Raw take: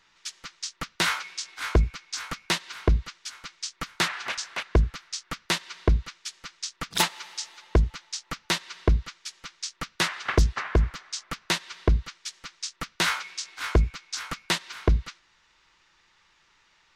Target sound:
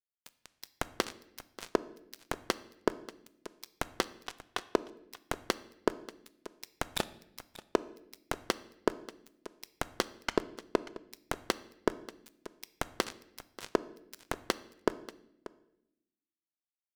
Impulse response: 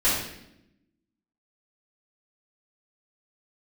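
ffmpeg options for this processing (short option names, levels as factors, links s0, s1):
-filter_complex "[0:a]acrossover=split=5400[s0][s1];[s1]acompressor=threshold=0.01:ratio=4:attack=1:release=60[s2];[s0][s2]amix=inputs=2:normalize=0,equalizer=f=430:t=o:w=2.1:g=7.5,acompressor=threshold=0.0251:ratio=5,acrusher=bits=3:mix=0:aa=0.5,aecho=1:1:586:0.141,asplit=2[s3][s4];[1:a]atrim=start_sample=2205[s5];[s4][s5]afir=irnorm=-1:irlink=0,volume=0.0376[s6];[s3][s6]amix=inputs=2:normalize=0,volume=1.5"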